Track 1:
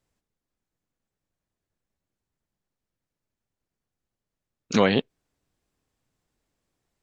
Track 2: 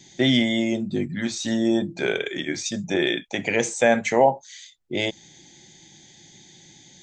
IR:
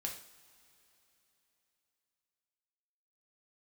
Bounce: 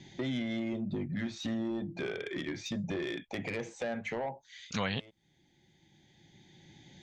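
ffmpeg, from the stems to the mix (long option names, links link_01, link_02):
-filter_complex "[0:a]equalizer=frequency=350:width=0.94:gain=-14,volume=-8.5dB,asplit=2[link_01][link_02];[1:a]lowpass=3000,acompressor=threshold=-32dB:ratio=4,asoftclip=type=tanh:threshold=-28.5dB,volume=-0.5dB[link_03];[link_02]apad=whole_len=309991[link_04];[link_03][link_04]sidechaincompress=threshold=-55dB:ratio=3:attack=12:release=1250[link_05];[link_01][link_05]amix=inputs=2:normalize=0,equalizer=frequency=76:width=0.72:gain=6.5"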